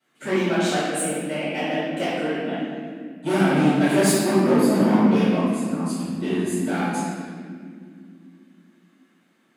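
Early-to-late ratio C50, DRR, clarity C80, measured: -3.5 dB, -19.0 dB, -0.5 dB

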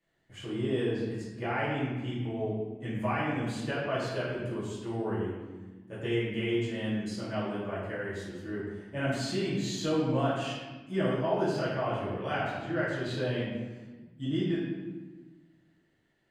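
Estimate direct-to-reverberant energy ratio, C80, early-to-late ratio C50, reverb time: -10.5 dB, 2.0 dB, 0.0 dB, 1.3 s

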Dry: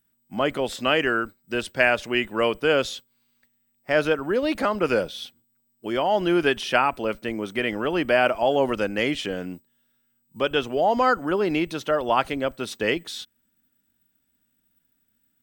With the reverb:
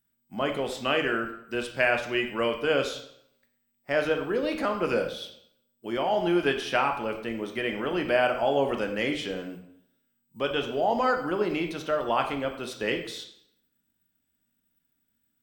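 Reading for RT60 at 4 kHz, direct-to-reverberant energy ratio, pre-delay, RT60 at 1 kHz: 0.60 s, 4.0 dB, 12 ms, 0.70 s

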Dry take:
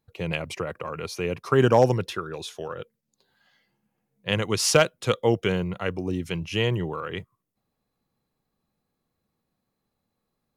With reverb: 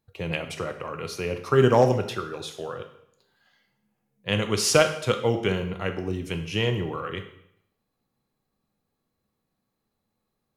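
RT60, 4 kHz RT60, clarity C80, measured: 0.70 s, 0.65 s, 13.0 dB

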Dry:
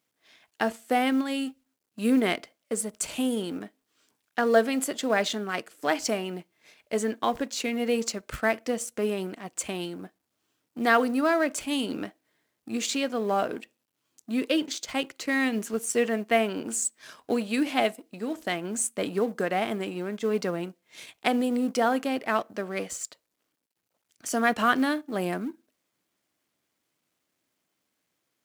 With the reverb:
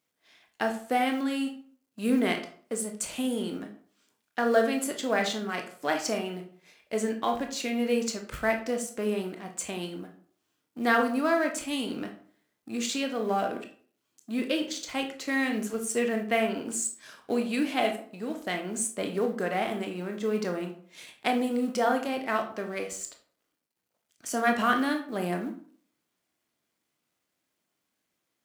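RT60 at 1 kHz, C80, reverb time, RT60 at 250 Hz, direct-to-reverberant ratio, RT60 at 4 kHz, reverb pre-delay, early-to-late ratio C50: 0.50 s, 14.0 dB, 0.50 s, 0.55 s, 4.0 dB, 0.35 s, 20 ms, 9.5 dB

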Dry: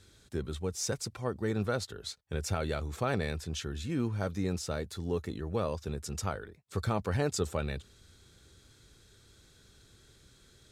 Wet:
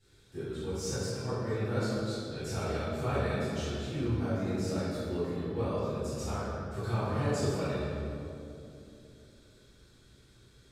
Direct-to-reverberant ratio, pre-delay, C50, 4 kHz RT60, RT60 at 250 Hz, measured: -15.5 dB, 3 ms, -4.5 dB, 1.5 s, 4.0 s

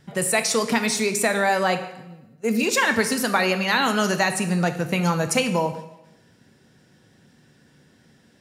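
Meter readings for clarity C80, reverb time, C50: 12.5 dB, 0.95 s, 10.5 dB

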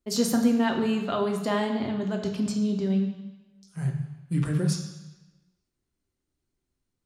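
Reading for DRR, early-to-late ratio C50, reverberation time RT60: 2.0 dB, 6.5 dB, 1.1 s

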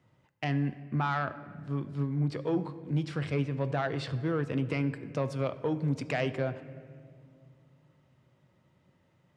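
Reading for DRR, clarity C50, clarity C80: 11.5 dB, 14.0 dB, 15.0 dB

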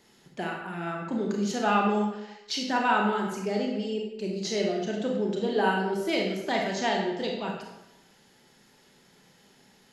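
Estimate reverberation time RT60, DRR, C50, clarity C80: 0.95 s, 0.0 dB, 3.0 dB, 5.5 dB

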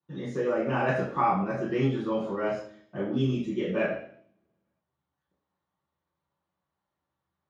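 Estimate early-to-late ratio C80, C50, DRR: 7.5 dB, 3.5 dB, -11.0 dB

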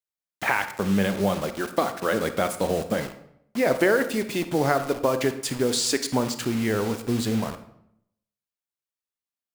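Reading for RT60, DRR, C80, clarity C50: 0.75 s, 9.0 dB, 14.0 dB, 11.0 dB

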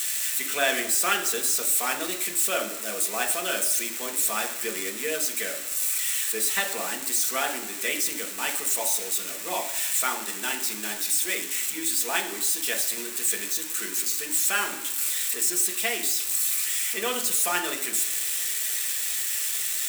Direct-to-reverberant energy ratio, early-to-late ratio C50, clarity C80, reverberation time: 1.5 dB, 10.5 dB, 13.0 dB, 1.0 s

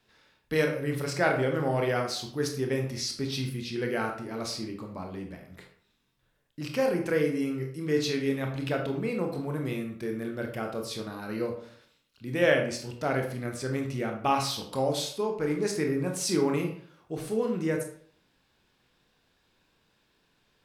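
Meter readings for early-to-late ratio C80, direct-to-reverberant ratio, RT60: 10.5 dB, 2.5 dB, 0.55 s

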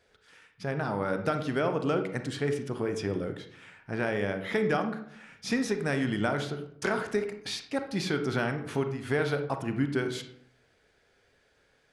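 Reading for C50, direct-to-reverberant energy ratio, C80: 9.0 dB, 6.5 dB, 12.5 dB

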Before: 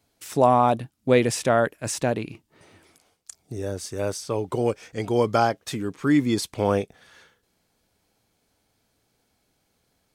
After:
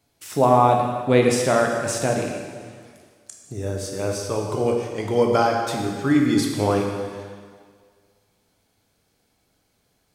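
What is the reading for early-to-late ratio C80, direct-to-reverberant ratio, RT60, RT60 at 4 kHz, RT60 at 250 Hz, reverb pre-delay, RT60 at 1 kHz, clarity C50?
4.0 dB, 0.5 dB, 1.8 s, 1.7 s, 1.8 s, 6 ms, 1.8 s, 3.0 dB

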